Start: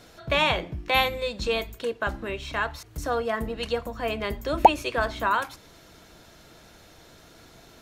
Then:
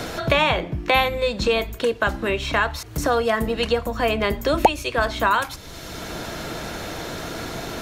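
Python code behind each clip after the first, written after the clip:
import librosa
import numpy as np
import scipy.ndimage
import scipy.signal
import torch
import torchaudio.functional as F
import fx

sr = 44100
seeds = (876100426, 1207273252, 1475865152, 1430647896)

y = fx.band_squash(x, sr, depth_pct=70)
y = y * librosa.db_to_amplitude(6.0)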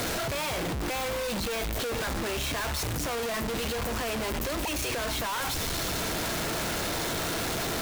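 y = np.sign(x) * np.sqrt(np.mean(np.square(x)))
y = y * librosa.db_to_amplitude(-7.5)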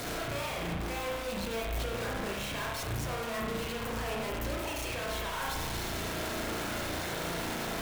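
y = fx.rev_spring(x, sr, rt60_s=1.1, pass_ms=(35,), chirp_ms=65, drr_db=-2.0)
y = y * librosa.db_to_amplitude(-8.0)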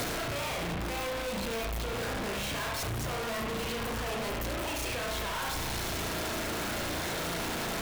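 y = np.clip(x, -10.0 ** (-38.5 / 20.0), 10.0 ** (-38.5 / 20.0))
y = y * librosa.db_to_amplitude(6.5)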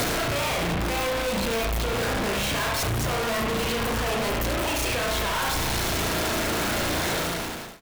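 y = fx.fade_out_tail(x, sr, length_s=0.66)
y = y * librosa.db_to_amplitude(8.0)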